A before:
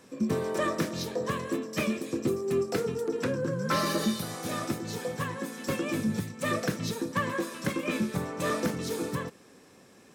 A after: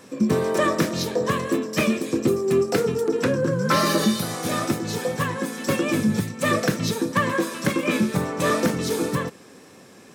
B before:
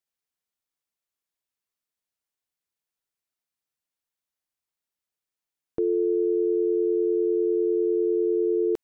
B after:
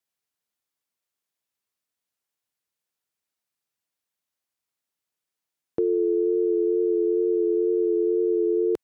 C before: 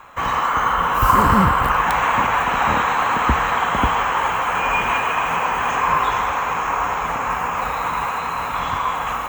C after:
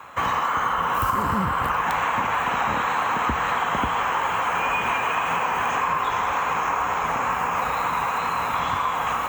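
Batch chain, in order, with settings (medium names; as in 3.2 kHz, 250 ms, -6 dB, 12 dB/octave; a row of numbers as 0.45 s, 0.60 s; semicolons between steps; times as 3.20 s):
high-pass 71 Hz; compression, threshold -21 dBFS; wow and flutter 21 cents; normalise loudness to -23 LUFS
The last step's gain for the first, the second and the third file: +8.0 dB, +2.5 dB, +1.0 dB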